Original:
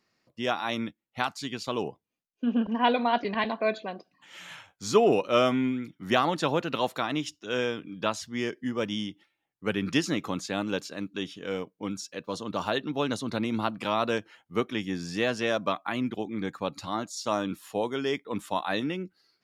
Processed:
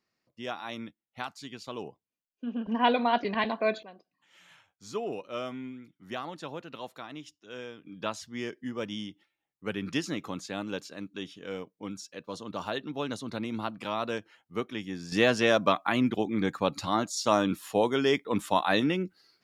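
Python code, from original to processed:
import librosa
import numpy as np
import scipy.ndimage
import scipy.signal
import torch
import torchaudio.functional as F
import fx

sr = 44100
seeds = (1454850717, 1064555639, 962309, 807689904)

y = fx.gain(x, sr, db=fx.steps((0.0, -8.0), (2.67, -0.5), (3.83, -13.0), (7.86, -5.0), (15.12, 4.0)))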